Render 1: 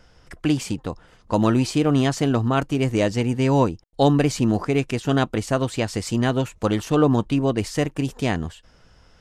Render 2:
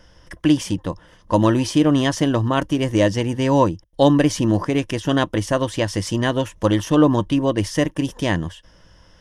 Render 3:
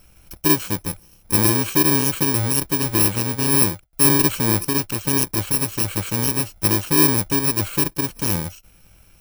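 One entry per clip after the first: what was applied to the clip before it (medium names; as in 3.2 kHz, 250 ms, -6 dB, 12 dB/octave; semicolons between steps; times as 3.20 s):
rippled EQ curve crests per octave 1.2, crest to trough 8 dB; trim +2 dB
bit-reversed sample order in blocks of 64 samples; trim -1 dB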